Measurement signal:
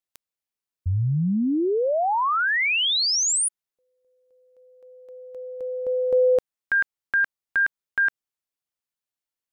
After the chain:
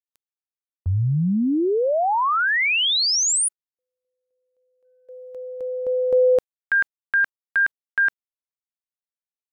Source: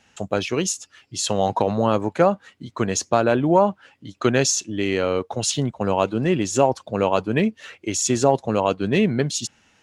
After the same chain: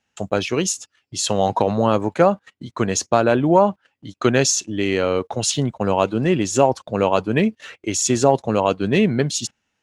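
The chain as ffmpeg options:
-af "agate=range=-17dB:threshold=-47dB:ratio=16:release=68:detection=peak,volume=2dB"

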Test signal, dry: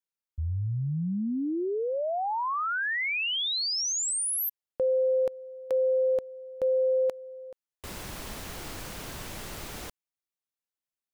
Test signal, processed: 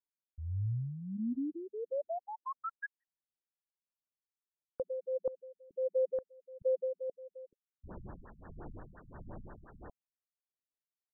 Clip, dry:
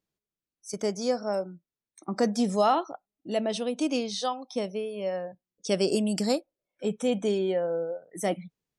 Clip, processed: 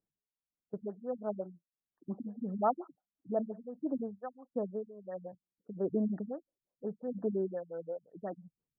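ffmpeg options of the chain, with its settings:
-filter_complex "[0:a]acrossover=split=1400[a][b];[a]aeval=exprs='val(0)*(1-0.7/2+0.7/2*cos(2*PI*1.5*n/s))':c=same[c];[b]aeval=exprs='val(0)*(1-0.7/2-0.7/2*cos(2*PI*1.5*n/s))':c=same[d];[c][d]amix=inputs=2:normalize=0,afftfilt=real='re*lt(b*sr/1024,200*pow(1900/200,0.5+0.5*sin(2*PI*5.7*pts/sr)))':imag='im*lt(b*sr/1024,200*pow(1900/200,0.5+0.5*sin(2*PI*5.7*pts/sr)))':win_size=1024:overlap=0.75,volume=-3.5dB"

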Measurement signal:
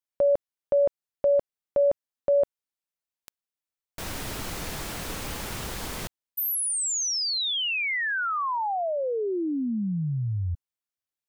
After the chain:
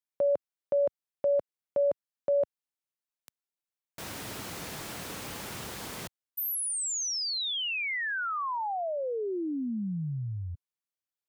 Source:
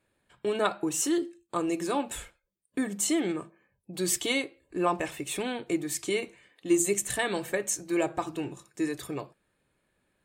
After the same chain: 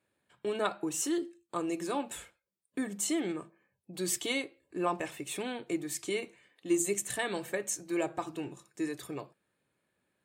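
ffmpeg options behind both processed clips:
-af "highpass=100,volume=-4.5dB"

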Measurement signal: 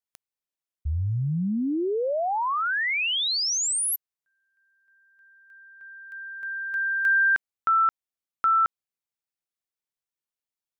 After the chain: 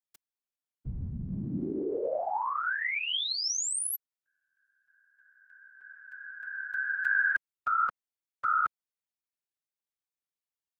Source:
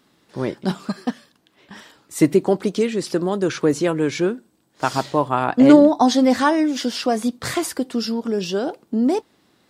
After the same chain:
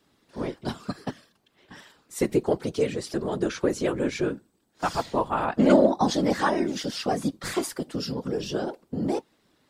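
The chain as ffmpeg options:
-filter_complex "[0:a]acrossover=split=260|3100[a][b][c];[a]acompressor=threshold=-31dB:ratio=6:attack=51:release=128:knee=2.83:detection=peak[d];[d][b][c]amix=inputs=3:normalize=0,afftfilt=real='hypot(re,im)*cos(2*PI*random(0))':imag='hypot(re,im)*sin(2*PI*random(1))':win_size=512:overlap=0.75"

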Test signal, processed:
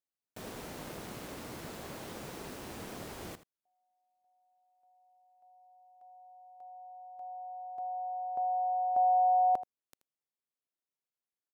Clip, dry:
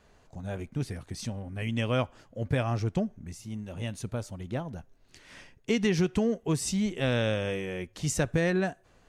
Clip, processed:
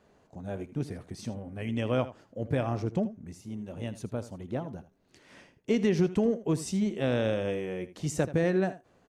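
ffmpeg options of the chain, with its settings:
-af "tremolo=f=190:d=0.261,highpass=f=470:p=1,tiltshelf=f=700:g=8,aecho=1:1:80:0.178,volume=2.5dB"

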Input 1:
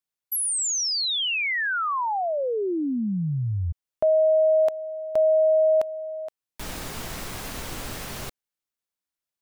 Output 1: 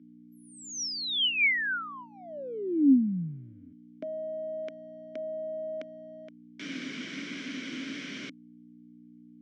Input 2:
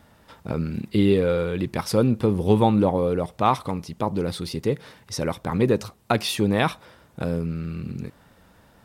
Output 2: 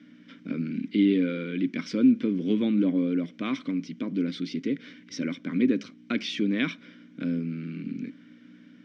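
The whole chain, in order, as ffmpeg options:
-filter_complex "[0:a]asplit=2[a][b];[b]acompressor=threshold=-31dB:ratio=6:attack=0.15:release=23:knee=1:detection=peak,volume=-2.5dB[c];[a][c]amix=inputs=2:normalize=0,aeval=exprs='val(0)+0.00891*(sin(2*PI*60*n/s)+sin(2*PI*2*60*n/s)/2+sin(2*PI*3*60*n/s)/3+sin(2*PI*4*60*n/s)/4+sin(2*PI*5*60*n/s)/5)':c=same,asplit=3[d][e][f];[d]bandpass=f=270:t=q:w=8,volume=0dB[g];[e]bandpass=f=2.29k:t=q:w=8,volume=-6dB[h];[f]bandpass=f=3.01k:t=q:w=8,volume=-9dB[i];[g][h][i]amix=inputs=3:normalize=0,highpass=f=150:w=0.5412,highpass=f=150:w=1.3066,equalizer=f=170:t=q:w=4:g=4,equalizer=f=590:t=q:w=4:g=4,equalizer=f=990:t=q:w=4:g=10,equalizer=f=1.5k:t=q:w=4:g=9,equalizer=f=5.7k:t=q:w=4:g=9,lowpass=f=7.4k:w=0.5412,lowpass=f=7.4k:w=1.3066,volume=6dB"

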